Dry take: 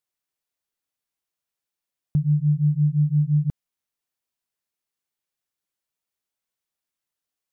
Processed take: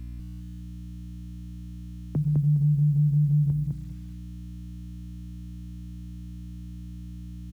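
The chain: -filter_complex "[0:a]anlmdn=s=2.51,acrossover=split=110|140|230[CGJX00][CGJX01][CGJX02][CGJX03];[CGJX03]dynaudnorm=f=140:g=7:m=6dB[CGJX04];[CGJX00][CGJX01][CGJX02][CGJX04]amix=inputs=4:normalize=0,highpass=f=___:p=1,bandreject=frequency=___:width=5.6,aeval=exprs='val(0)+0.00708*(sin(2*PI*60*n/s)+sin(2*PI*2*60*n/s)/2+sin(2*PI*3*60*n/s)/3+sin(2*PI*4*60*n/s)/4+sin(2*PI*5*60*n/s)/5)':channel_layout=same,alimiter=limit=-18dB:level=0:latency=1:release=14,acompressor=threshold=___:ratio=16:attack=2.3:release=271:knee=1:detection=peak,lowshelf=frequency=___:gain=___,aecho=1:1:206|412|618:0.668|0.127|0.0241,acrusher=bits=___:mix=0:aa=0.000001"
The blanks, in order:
65, 210, -27dB, 280, 8, 9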